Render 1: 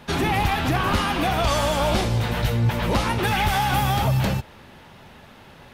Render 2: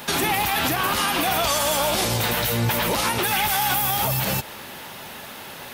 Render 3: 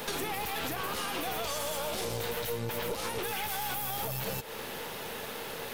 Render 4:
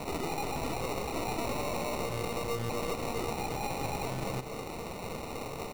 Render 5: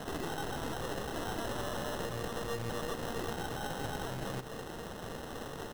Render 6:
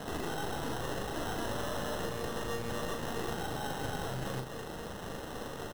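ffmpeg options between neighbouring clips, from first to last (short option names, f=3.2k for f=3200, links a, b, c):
-af "aemphasis=mode=production:type=bsi,acompressor=threshold=-27dB:ratio=4,alimiter=limit=-21.5dB:level=0:latency=1:release=45,volume=9dB"
-af "equalizer=f=460:t=o:w=0.29:g=13,acompressor=threshold=-29dB:ratio=5,aeval=exprs='(tanh(22.4*val(0)+0.6)-tanh(0.6))/22.4':c=same"
-af "acrusher=samples=27:mix=1:aa=0.000001,aecho=1:1:242:0.299"
-af "acrusher=samples=19:mix=1:aa=0.000001,volume=-3.5dB"
-filter_complex "[0:a]asplit=2[a][b];[b]adelay=39,volume=-5dB[c];[a][c]amix=inputs=2:normalize=0"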